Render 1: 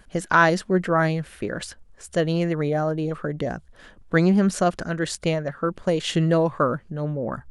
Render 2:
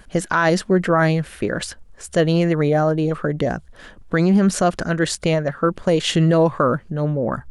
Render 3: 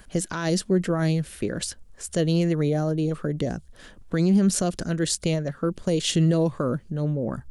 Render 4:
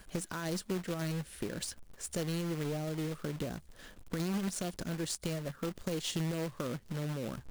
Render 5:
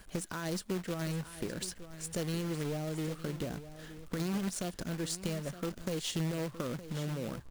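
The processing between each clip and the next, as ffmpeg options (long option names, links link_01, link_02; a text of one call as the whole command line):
ffmpeg -i in.wav -af "alimiter=level_in=12.5dB:limit=-1dB:release=50:level=0:latency=1,volume=-6.5dB" out.wav
ffmpeg -i in.wav -filter_complex "[0:a]highshelf=frequency=5000:gain=6,acrossover=split=480|3000[link_01][link_02][link_03];[link_02]acompressor=threshold=-52dB:ratio=1.5[link_04];[link_01][link_04][link_03]amix=inputs=3:normalize=0,volume=-3.5dB" out.wav
ffmpeg -i in.wav -af "aeval=exprs='0.376*(cos(1*acos(clip(val(0)/0.376,-1,1)))-cos(1*PI/2))+0.00596*(cos(6*acos(clip(val(0)/0.376,-1,1)))-cos(6*PI/2))+0.00299*(cos(7*acos(clip(val(0)/0.376,-1,1)))-cos(7*PI/2))':channel_layout=same,acrusher=bits=2:mode=log:mix=0:aa=0.000001,acompressor=threshold=-30dB:ratio=2.5,volume=-5.5dB" out.wav
ffmpeg -i in.wav -af "aecho=1:1:915:0.211" out.wav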